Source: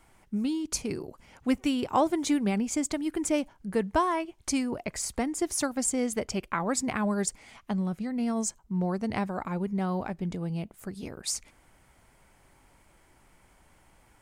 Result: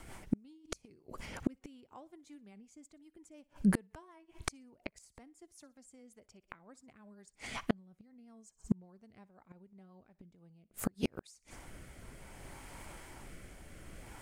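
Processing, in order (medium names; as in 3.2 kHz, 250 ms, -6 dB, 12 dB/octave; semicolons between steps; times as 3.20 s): rotary cabinet horn 5.5 Hz, later 0.6 Hz, at 9.92 s; thinning echo 61 ms, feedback 36%, high-pass 400 Hz, level -21 dB; inverted gate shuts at -29 dBFS, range -39 dB; trim +12 dB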